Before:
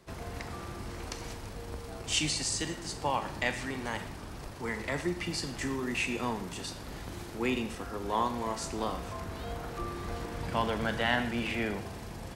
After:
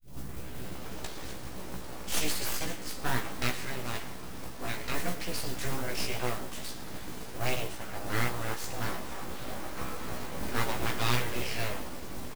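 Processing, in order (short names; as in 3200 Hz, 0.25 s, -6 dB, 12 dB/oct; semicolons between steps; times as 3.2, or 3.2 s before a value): tape start at the beginning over 1.52 s; bell 140 Hz +14 dB 0.21 oct; full-wave rectifier; modulation noise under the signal 15 dB; doubler 16 ms -4 dB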